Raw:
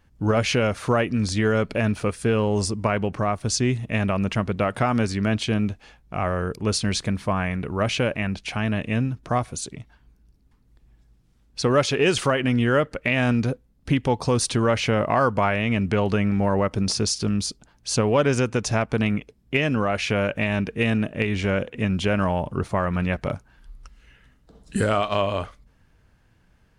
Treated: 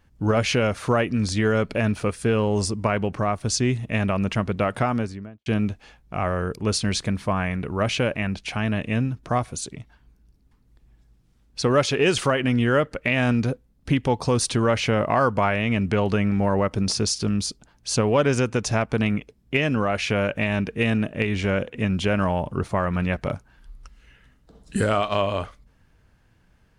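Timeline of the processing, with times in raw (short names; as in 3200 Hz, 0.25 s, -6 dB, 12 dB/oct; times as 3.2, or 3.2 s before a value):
4.73–5.46 studio fade out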